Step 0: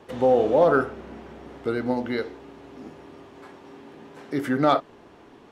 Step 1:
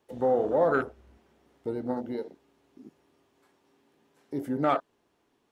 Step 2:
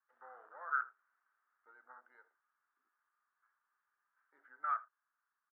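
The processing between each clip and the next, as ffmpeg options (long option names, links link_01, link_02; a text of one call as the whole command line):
ffmpeg -i in.wav -af "afwtdn=0.0501,aemphasis=mode=production:type=75kf,volume=-6dB" out.wav
ffmpeg -i in.wav -af "asuperpass=centerf=1400:order=4:qfactor=2.9,aecho=1:1:81:0.0891,volume=-4dB" out.wav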